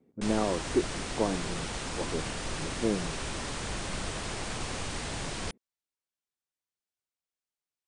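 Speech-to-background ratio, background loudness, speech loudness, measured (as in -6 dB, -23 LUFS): 2.0 dB, -35.5 LUFS, -33.5 LUFS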